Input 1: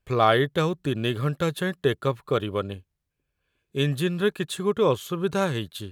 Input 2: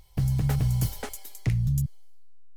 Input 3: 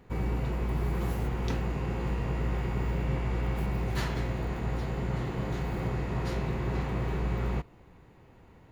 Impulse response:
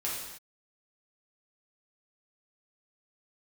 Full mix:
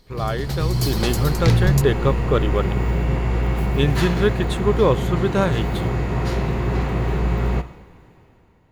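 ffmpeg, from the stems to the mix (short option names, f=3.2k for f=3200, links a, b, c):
-filter_complex "[0:a]highshelf=f=5k:g=-9,volume=-7.5dB[a];[1:a]equalizer=f=4.3k:t=o:w=0.78:g=14.5,volume=-4.5dB[b];[2:a]volume=-4.5dB,asplit=2[c][d];[d]volume=-13.5dB[e];[3:a]atrim=start_sample=2205[f];[e][f]afir=irnorm=-1:irlink=0[g];[a][b][c][g]amix=inputs=4:normalize=0,dynaudnorm=f=110:g=13:m=12dB"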